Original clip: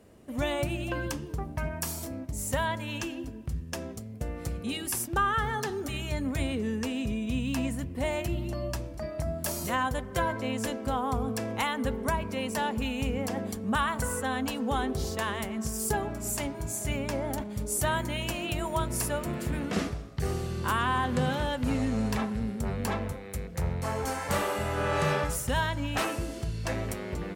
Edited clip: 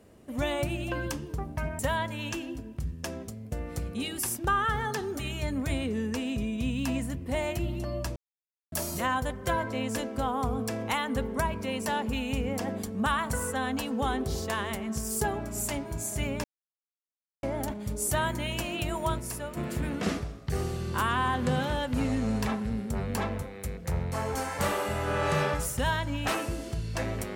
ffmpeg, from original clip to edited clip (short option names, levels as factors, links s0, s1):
-filter_complex "[0:a]asplit=7[s0][s1][s2][s3][s4][s5][s6];[s0]atrim=end=1.792[s7];[s1]atrim=start=2.478:end=8.85,asetpts=PTS-STARTPTS,afade=t=out:st=6.368:d=0.004:c=hsin[s8];[s2]atrim=start=8.85:end=9.41,asetpts=PTS-STARTPTS,volume=0[s9];[s3]atrim=start=9.41:end=17.13,asetpts=PTS-STARTPTS,afade=t=in:d=0.004:c=hsin,afade=t=out:st=7.716:d=0.004:c=hsin,apad=pad_dur=0.99[s10];[s4]atrim=start=17.13:end=18.902,asetpts=PTS-STARTPTS,afade=t=in:d=0.004:c=hsin[s11];[s5]atrim=start=18.898:end=19.272,asetpts=PTS-STARTPTS,volume=0.501[s12];[s6]atrim=start=19.268[s13];[s8][s9][s10][s11]concat=n=4:v=0:a=1[s14];[s7][s14]acrossfade=d=0.004:c1=hsin:c2=hsin[s15];[s15][s12]acrossfade=d=0.004:c1=hsin:c2=hsin[s16];[s16][s13]acrossfade=d=0.004:c1=hsin:c2=hsin"